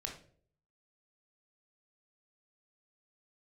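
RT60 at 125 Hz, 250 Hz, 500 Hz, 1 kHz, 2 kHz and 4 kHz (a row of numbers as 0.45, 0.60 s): 0.80, 0.60, 0.65, 0.40, 0.40, 0.35 s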